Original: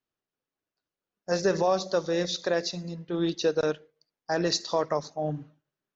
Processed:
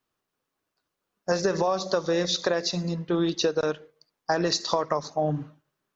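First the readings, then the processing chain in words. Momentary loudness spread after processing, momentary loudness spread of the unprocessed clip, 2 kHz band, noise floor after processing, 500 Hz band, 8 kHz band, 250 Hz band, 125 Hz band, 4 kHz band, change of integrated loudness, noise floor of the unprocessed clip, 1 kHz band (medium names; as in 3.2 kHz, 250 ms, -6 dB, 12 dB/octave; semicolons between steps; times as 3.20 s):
8 LU, 11 LU, +2.0 dB, -83 dBFS, +1.0 dB, no reading, +2.5 dB, +3.5 dB, +3.5 dB, +1.5 dB, under -85 dBFS, +3.0 dB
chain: peaking EQ 1.1 kHz +5 dB 0.58 oct; compression 10:1, threshold -28 dBFS, peak gain reduction 10.5 dB; trim +7.5 dB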